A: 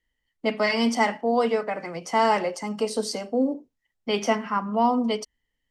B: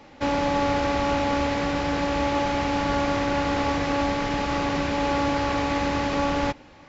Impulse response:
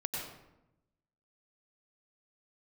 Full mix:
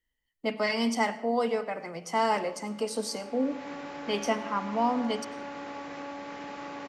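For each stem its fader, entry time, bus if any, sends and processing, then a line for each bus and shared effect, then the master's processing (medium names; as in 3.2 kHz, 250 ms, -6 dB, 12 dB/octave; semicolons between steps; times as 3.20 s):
-6.5 dB, 0.00 s, send -15.5 dB, none
2.97 s -22.5 dB -> 3.68 s -9.5 dB, 2.10 s, no send, treble shelf 3.1 kHz +11.5 dB; compression, threshold -25 dBFS, peak gain reduction 7 dB; three-band isolator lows -23 dB, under 170 Hz, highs -13 dB, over 2.3 kHz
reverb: on, RT60 0.90 s, pre-delay 87 ms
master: treble shelf 10 kHz +8 dB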